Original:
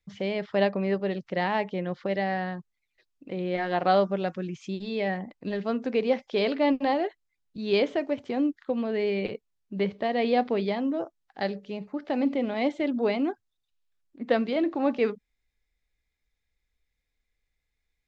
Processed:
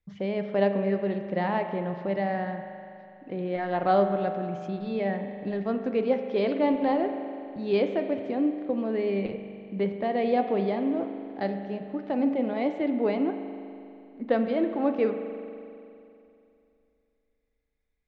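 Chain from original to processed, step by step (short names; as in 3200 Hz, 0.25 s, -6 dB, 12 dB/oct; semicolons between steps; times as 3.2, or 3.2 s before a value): high shelf 2400 Hz -12 dB; spring tank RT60 2.7 s, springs 40 ms, chirp 30 ms, DRR 7 dB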